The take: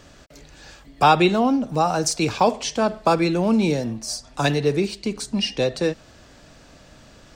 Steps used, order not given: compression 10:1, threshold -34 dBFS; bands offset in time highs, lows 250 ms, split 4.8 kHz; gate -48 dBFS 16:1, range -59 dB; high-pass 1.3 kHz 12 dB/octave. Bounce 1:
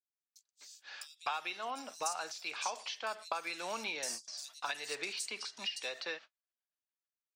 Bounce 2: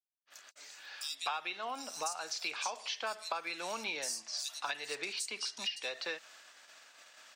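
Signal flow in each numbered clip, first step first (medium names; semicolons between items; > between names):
high-pass > compression > gate > bands offset in time; bands offset in time > gate > high-pass > compression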